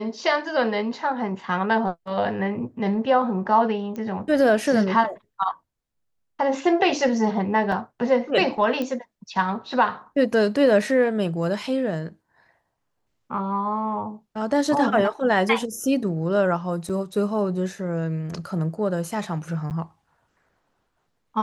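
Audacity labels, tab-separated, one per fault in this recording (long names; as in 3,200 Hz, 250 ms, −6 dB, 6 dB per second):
3.960000	3.960000	click −22 dBFS
7.720000	7.720000	drop-out 2.4 ms
8.820000	8.820000	click −15 dBFS
16.890000	16.900000	drop-out 6.3 ms
19.700000	19.710000	drop-out 9 ms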